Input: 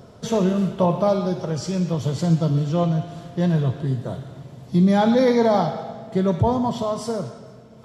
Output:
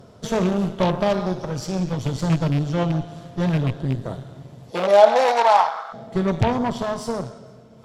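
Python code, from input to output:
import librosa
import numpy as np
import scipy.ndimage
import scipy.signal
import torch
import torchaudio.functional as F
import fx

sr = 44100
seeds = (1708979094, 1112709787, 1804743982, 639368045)

y = fx.rattle_buzz(x, sr, strikes_db=-17.0, level_db=-25.0)
y = fx.cheby_harmonics(y, sr, harmonics=(2, 4, 6), levels_db=(-6, -10, -12), full_scale_db=-8.5)
y = fx.highpass_res(y, sr, hz=fx.line((4.7, 480.0), (5.92, 1200.0)), q=4.5, at=(4.7, 5.92), fade=0.02)
y = y * librosa.db_to_amplitude(-1.5)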